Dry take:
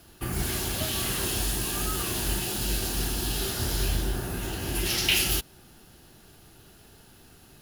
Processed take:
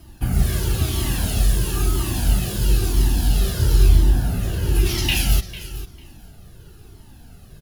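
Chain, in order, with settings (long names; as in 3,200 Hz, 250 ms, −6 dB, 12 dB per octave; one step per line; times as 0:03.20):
low-shelf EQ 370 Hz +11.5 dB
repeating echo 448 ms, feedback 16%, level −14.5 dB
flanger whose copies keep moving one way falling 1 Hz
level +4.5 dB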